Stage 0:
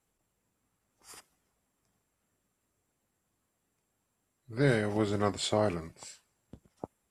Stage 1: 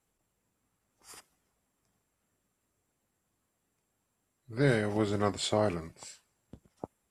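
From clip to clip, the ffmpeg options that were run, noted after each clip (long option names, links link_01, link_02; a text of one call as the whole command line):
ffmpeg -i in.wav -af anull out.wav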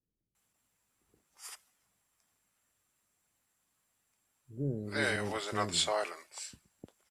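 ffmpeg -i in.wav -filter_complex "[0:a]tiltshelf=frequency=830:gain=-5.5,acrossover=split=400[link_01][link_02];[link_02]adelay=350[link_03];[link_01][link_03]amix=inputs=2:normalize=0,volume=-1dB" out.wav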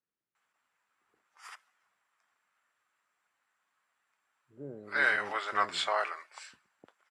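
ffmpeg -i in.wav -af "bandpass=frequency=1400:width_type=q:width=1.5:csg=0,volume=8.5dB" out.wav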